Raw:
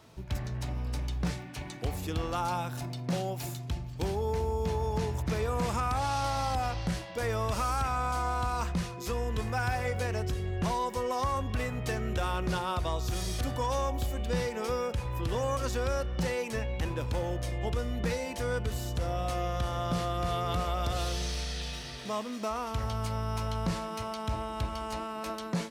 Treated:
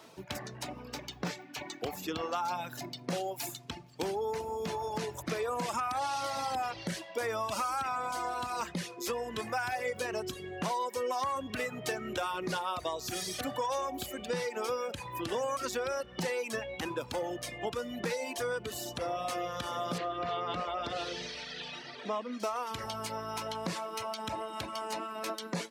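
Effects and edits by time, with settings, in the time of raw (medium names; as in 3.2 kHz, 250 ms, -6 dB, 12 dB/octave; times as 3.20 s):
0.82–3.01 s: peaking EQ 9.5 kHz -14.5 dB 0.27 oct
19.98–22.40 s: low-pass 3.6 kHz
whole clip: reverb removal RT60 1.5 s; high-pass 260 Hz 12 dB/octave; compression 2.5:1, threshold -36 dBFS; trim +4.5 dB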